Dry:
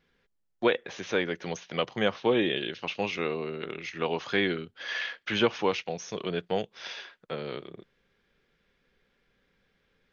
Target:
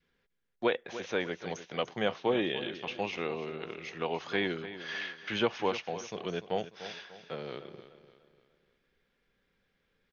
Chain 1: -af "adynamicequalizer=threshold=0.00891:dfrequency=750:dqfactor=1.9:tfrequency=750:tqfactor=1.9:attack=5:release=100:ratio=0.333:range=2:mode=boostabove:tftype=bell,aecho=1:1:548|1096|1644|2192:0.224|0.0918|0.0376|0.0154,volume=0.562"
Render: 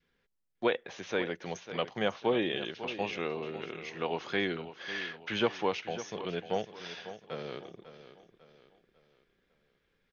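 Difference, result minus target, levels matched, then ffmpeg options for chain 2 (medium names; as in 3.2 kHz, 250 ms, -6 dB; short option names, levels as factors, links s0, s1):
echo 252 ms late
-af "adynamicequalizer=threshold=0.00891:dfrequency=750:dqfactor=1.9:tfrequency=750:tqfactor=1.9:attack=5:release=100:ratio=0.333:range=2:mode=boostabove:tftype=bell,aecho=1:1:296|592|888|1184:0.224|0.0918|0.0376|0.0154,volume=0.562"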